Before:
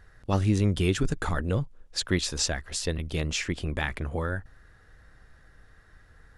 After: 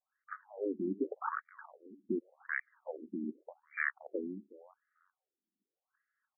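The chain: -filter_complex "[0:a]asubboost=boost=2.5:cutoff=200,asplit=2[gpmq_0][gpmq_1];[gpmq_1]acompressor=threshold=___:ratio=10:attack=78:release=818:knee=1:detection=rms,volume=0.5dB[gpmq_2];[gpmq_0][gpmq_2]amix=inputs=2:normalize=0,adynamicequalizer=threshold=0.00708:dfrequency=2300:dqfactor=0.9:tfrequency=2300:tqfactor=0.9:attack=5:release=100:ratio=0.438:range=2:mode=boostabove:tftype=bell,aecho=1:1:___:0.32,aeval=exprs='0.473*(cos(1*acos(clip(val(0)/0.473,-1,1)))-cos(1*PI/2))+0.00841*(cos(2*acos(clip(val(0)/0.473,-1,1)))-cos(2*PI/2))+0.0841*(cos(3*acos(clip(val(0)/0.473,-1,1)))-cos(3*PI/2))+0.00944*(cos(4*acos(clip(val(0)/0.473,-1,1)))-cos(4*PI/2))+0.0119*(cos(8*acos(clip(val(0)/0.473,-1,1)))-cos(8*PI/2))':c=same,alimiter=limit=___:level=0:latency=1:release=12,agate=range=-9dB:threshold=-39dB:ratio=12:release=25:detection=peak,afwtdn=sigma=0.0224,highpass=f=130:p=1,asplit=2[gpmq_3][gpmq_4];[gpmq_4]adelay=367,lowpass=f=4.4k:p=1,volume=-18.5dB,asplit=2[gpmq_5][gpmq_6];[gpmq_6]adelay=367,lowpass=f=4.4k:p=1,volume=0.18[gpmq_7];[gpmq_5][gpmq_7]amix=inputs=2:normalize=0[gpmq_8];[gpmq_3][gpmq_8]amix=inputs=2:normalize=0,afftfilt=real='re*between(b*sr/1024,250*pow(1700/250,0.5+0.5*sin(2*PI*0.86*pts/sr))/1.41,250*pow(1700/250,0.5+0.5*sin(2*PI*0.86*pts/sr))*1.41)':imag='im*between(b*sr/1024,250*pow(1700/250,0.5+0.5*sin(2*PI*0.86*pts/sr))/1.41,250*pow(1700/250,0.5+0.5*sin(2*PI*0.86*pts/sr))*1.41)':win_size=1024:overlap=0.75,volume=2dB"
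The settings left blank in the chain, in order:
-32dB, 5.4, -16dB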